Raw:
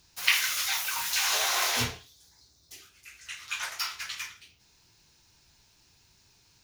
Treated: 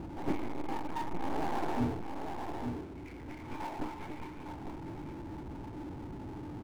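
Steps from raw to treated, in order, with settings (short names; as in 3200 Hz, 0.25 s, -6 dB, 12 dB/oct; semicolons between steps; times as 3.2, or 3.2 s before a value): tracing distortion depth 0.18 ms; notch 1200 Hz; in parallel at +2.5 dB: upward compressor, threshold -34 dBFS; on the sum: vocal tract filter u; echo 0.856 s -12 dB; power-law curve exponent 0.5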